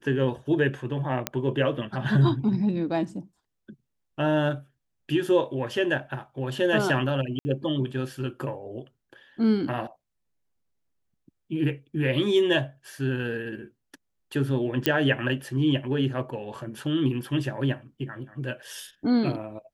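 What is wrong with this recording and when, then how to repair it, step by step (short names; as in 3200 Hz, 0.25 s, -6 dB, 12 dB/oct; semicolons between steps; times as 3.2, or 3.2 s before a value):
1.27 pop -8 dBFS
7.39–7.45 gap 60 ms
14.86 pop -7 dBFS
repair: de-click; interpolate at 7.39, 60 ms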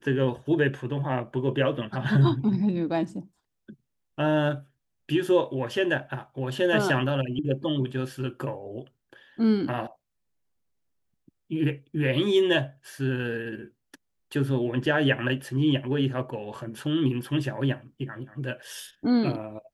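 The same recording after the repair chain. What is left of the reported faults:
none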